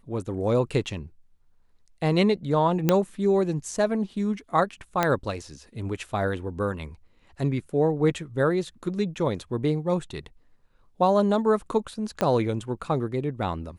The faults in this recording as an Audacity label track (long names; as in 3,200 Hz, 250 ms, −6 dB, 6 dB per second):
2.890000	2.890000	click −6 dBFS
5.030000	5.030000	click −8 dBFS
12.210000	12.210000	click −10 dBFS